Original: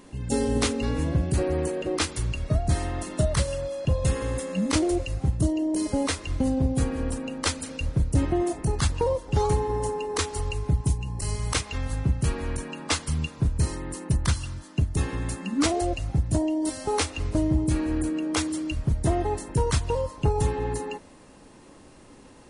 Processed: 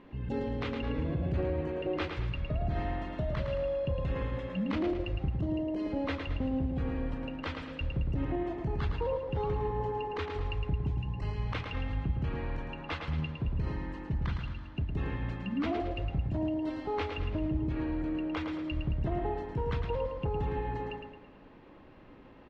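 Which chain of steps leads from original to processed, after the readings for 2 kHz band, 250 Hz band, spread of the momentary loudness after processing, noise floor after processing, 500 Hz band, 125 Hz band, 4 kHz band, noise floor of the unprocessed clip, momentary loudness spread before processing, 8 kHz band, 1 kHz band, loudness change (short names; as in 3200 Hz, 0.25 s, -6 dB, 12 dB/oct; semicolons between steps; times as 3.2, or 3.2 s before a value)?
-6.5 dB, -7.0 dB, 4 LU, -53 dBFS, -6.5 dB, -7.5 dB, -12.0 dB, -50 dBFS, 5 LU, under -35 dB, -6.5 dB, -7.5 dB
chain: LPF 3100 Hz 24 dB/oct; limiter -20.5 dBFS, peak gain reduction 8 dB; on a send: feedback echo 0.11 s, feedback 44%, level -6 dB; on the sum: gain -4.5 dB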